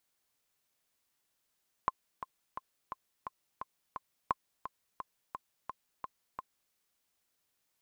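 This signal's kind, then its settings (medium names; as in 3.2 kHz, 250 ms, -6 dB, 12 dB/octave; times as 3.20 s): metronome 173 bpm, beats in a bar 7, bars 2, 1.05 kHz, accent 11 dB -15 dBFS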